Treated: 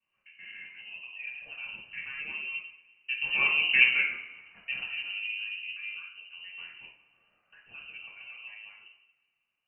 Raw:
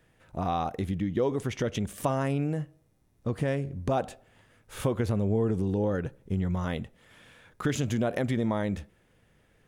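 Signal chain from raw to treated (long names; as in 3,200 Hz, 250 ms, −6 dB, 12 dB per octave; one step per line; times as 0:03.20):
reversed piece by piece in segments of 132 ms
source passing by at 0:03.67, 9 m/s, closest 1.7 metres
coupled-rooms reverb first 0.56 s, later 1.7 s, DRR −8 dB
voice inversion scrambler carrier 2,900 Hz
every ending faded ahead of time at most 450 dB per second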